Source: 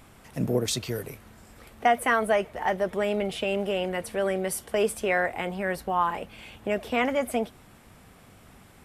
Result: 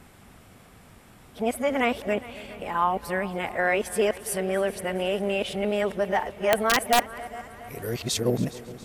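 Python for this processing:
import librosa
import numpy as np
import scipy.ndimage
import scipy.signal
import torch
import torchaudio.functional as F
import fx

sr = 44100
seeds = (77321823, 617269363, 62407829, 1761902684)

y = x[::-1].copy()
y = fx.echo_heads(y, sr, ms=138, heads='second and third', feedback_pct=54, wet_db=-19.0)
y = (np.mod(10.0 ** (12.0 / 20.0) * y + 1.0, 2.0) - 1.0) / 10.0 ** (12.0 / 20.0)
y = F.gain(torch.from_numpy(y), 1.0).numpy()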